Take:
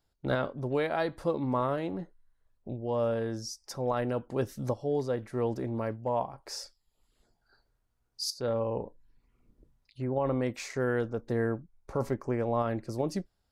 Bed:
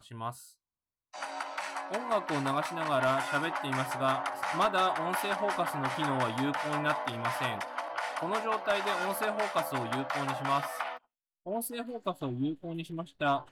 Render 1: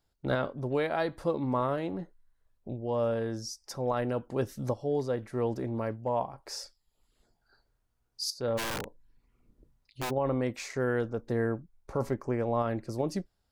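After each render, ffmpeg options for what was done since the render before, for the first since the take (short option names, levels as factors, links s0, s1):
-filter_complex "[0:a]asplit=3[s0][s1][s2];[s0]afade=t=out:st=8.57:d=0.02[s3];[s1]aeval=exprs='(mod(26.6*val(0)+1,2)-1)/26.6':c=same,afade=t=in:st=8.57:d=0.02,afade=t=out:st=10.09:d=0.02[s4];[s2]afade=t=in:st=10.09:d=0.02[s5];[s3][s4][s5]amix=inputs=3:normalize=0"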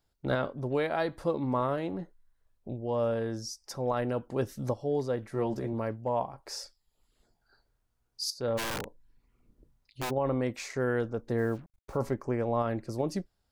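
-filter_complex "[0:a]asettb=1/sr,asplit=3[s0][s1][s2];[s0]atrim=end=5.304[s3];[s1]atrim=start=5.3:end=5.73,asetpts=PTS-STARTPTS,afade=t=in:d=0.004:c=qsin,afade=t=out:st=0.426:d=0.004:c=qsin,asplit=2[s4][s5];[s5]adelay=14,volume=0.562[s6];[s4][s6]amix=inputs=2:normalize=0,atrim=end_sample=18963[s7];[s2]atrim=start=5.726[s8];[s3][s7]acrossfade=d=0.004:c1=hsin:c2=qsin[s9];[s9][s8]acrossfade=d=0.004:c1=qsin:c2=hsin,asplit=3[s10][s11][s12];[s10]afade=t=out:st=11.37:d=0.02[s13];[s11]acrusher=bits=8:mix=0:aa=0.5,afade=t=in:st=11.37:d=0.02,afade=t=out:st=11.95:d=0.02[s14];[s12]afade=t=in:st=11.95:d=0.02[s15];[s13][s14][s15]amix=inputs=3:normalize=0"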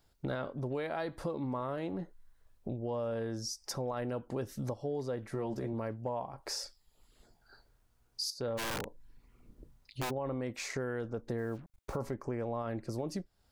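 -filter_complex "[0:a]asplit=2[s0][s1];[s1]alimiter=level_in=1.12:limit=0.0631:level=0:latency=1:release=28,volume=0.891,volume=1.12[s2];[s0][s2]amix=inputs=2:normalize=0,acompressor=threshold=0.0141:ratio=3"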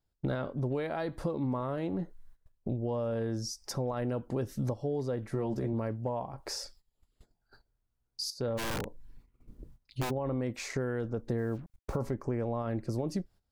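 -af "agate=range=0.158:threshold=0.00126:ratio=16:detection=peak,lowshelf=f=370:g=6.5"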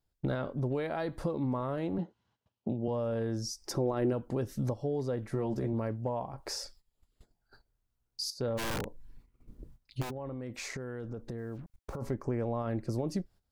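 -filter_complex "[0:a]asettb=1/sr,asplit=3[s0][s1][s2];[s0]atrim=end=1.984[s3];[s1]atrim=start=1.98:end=2.88,asetpts=PTS-STARTPTS,afade=t=in:d=0.004:c=qsin,afade=t=out:st=0.896:d=0.004:c=qsin,highpass=f=100:w=0.5412,highpass=f=100:w=1.3066,equalizer=f=140:t=q:w=4:g=-7,equalizer=f=210:t=q:w=4:g=5,equalizer=f=860:t=q:w=4:g=7,equalizer=f=1800:t=q:w=4:g=-6,equalizer=f=3000:t=q:w=4:g=8,lowpass=f=5900:w=0.5412,lowpass=f=5900:w=1.3066[s4];[s2]atrim=start=2.876[s5];[s3][s4]acrossfade=d=0.004:c1=hsin:c2=qsin[s6];[s6][s5]acrossfade=d=0.004:c1=qsin:c2=hsin,asettb=1/sr,asplit=3[s7][s8][s9];[s7]atrim=end=3.584[s10];[s8]atrim=start=3.58:end=4.13,asetpts=PTS-STARTPTS,afade=t=in:d=0.004:c=qsin,afade=t=out:st=0.546:d=0.004:c=qsin,equalizer=f=340:t=o:w=0.42:g=13.5[s11];[s9]atrim=start=4.126[s12];[s10][s11]acrossfade=d=0.004:c1=hsin:c2=qsin[s13];[s13][s12]acrossfade=d=0.004:c1=qsin:c2=hsin,asplit=3[s14][s15][s16];[s14]afade=t=out:st=10.01:d=0.02[s17];[s15]acompressor=threshold=0.0178:ratio=6:attack=3.2:release=140:knee=1:detection=peak,afade=t=in:st=10.01:d=0.02,afade=t=out:st=12.01:d=0.02[s18];[s16]afade=t=in:st=12.01:d=0.02[s19];[s17][s18][s19]amix=inputs=3:normalize=0"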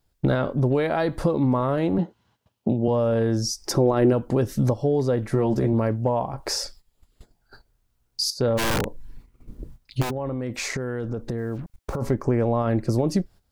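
-af "volume=3.55"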